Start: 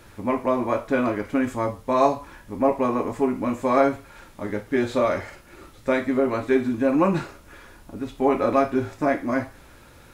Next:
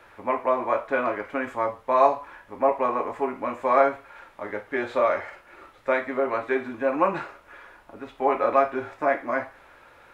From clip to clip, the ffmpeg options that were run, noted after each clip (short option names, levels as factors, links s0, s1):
-filter_complex "[0:a]acrossover=split=470 2800:gain=0.141 1 0.158[s0][s1][s2];[s0][s1][s2]amix=inputs=3:normalize=0,volume=1.33"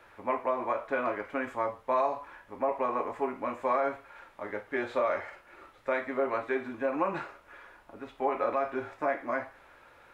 -af "alimiter=limit=0.2:level=0:latency=1:release=106,volume=0.596"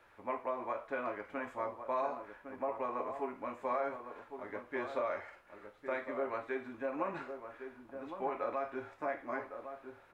-filter_complex "[0:a]asplit=2[s0][s1];[s1]adelay=1108,volume=0.398,highshelf=f=4000:g=-24.9[s2];[s0][s2]amix=inputs=2:normalize=0,volume=0.422"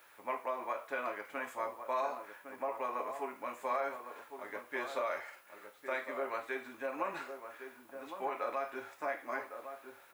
-af "aemphasis=mode=production:type=riaa,volume=1.12"